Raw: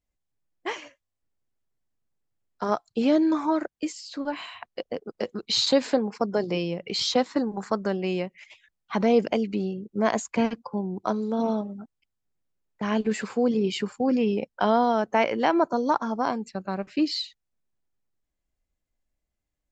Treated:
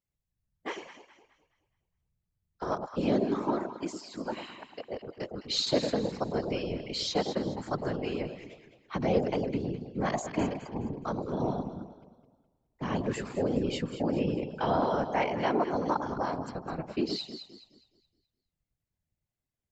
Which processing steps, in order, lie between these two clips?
delay that swaps between a low-pass and a high-pass 105 ms, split 910 Hz, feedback 60%, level −6.5 dB
random phases in short frames
level −6.5 dB

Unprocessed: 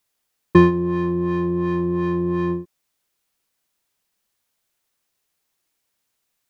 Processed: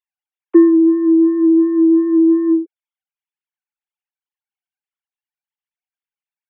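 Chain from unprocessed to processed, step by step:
three sine waves on the formant tracks
low shelf with overshoot 510 Hz +8.5 dB, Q 3
level −6 dB

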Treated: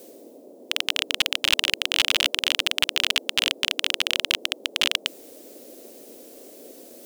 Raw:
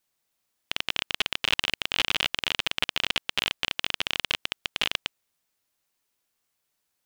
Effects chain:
high-shelf EQ 3,500 Hz +11.5 dB
reversed playback
upward compression, threshold −32 dBFS
reversed playback
noise in a band 240–610 Hz −47 dBFS

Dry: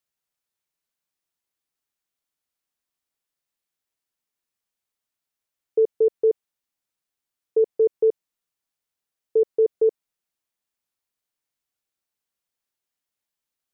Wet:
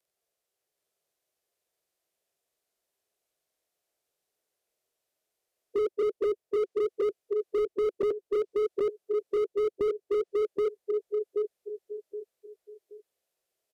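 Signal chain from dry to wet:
partials spread apart or drawn together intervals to 91%
treble cut that deepens with the level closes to 310 Hz, closed at −23 dBFS
in parallel at −1 dB: output level in coarse steps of 20 dB
on the sum: flat-topped bell 510 Hz +11.5 dB 1.2 octaves
on a send: repeating echo 775 ms, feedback 32%, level −4.5 dB
on the sum: slew-rate limiting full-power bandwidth 26 Hz

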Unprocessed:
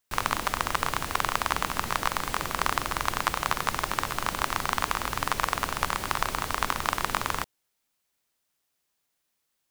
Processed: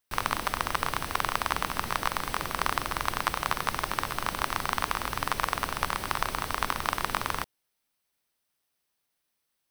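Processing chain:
notch filter 7,000 Hz, Q 5.5
level −1.5 dB

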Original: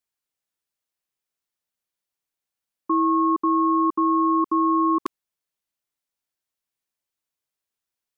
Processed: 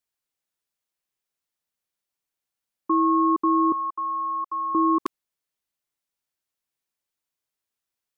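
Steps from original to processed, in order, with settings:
0:03.72–0:04.75: four-pole ladder high-pass 590 Hz, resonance 35%

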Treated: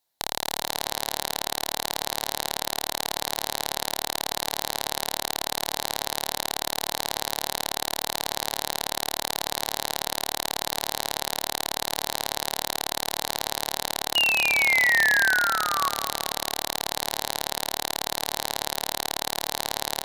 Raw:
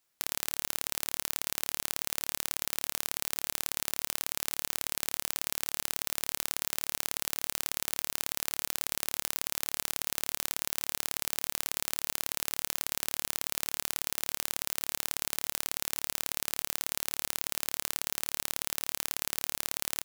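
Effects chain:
harmonic generator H 3 −9 dB, 6 −6 dB, 7 −22 dB, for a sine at −2.5 dBFS
parametric band 820 Hz +10 dB 1.1 octaves
sound drawn into the spectrogram fall, 0:14.15–0:15.89, 1,100–2,900 Hz −20 dBFS
soft clipping −3.5 dBFS, distortion −13 dB
thirty-one-band graphic EQ 1,250 Hz −10 dB, 2,500 Hz −5 dB, 4,000 Hz +9 dB, 12,500 Hz +6 dB
tape delay 214 ms, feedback 44%, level −9 dB, low-pass 2,900 Hz
level +1 dB

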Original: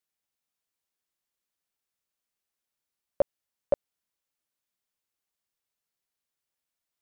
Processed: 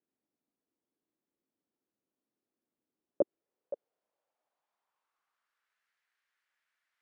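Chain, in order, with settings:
band-pass filter sweep 290 Hz → 1,700 Hz, 0:02.95–0:05.85
compressor whose output falls as the input rises −32 dBFS, ratio −0.5
level +7 dB

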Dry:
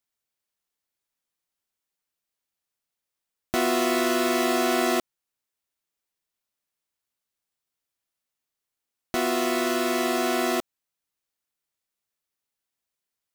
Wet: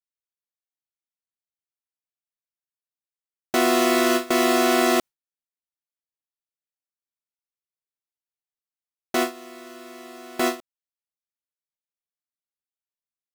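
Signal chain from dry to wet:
noise gate with hold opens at −14 dBFS
level +4 dB

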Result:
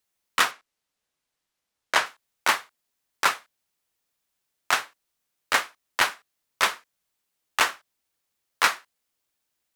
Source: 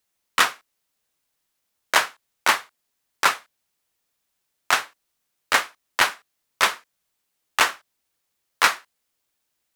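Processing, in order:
0:00.51–0:02.06: high-shelf EQ 11,000 Hz −12 dB
level −3 dB

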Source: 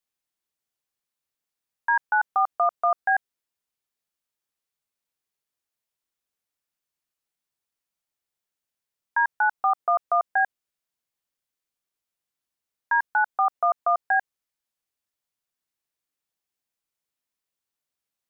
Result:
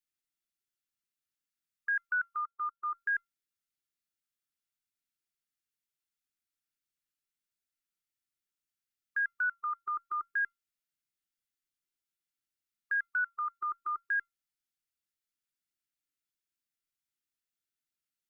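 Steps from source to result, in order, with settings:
linear-phase brick-wall band-stop 400–1,200 Hz
tuned comb filter 690 Hz, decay 0.18 s, harmonics all, mix 60%
0:02.41–0:02.94: expander for the loud parts 2.5 to 1, over −44 dBFS
level +1.5 dB

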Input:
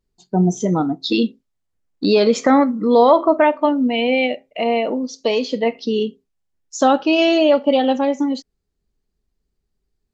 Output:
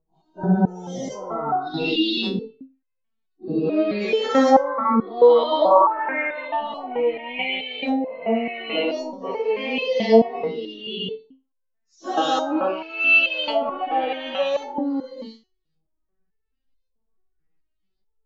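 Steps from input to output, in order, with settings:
every bin's largest magnitude spread in time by 240 ms
in parallel at +2.5 dB: brickwall limiter −5 dBFS, peak gain reduction 9.5 dB
on the sum: auto-filter low-pass saw up 1.6 Hz 760–4,500 Hz
time stretch by phase vocoder 1.8×
step-sequenced resonator 4.6 Hz 160–520 Hz
level −1 dB

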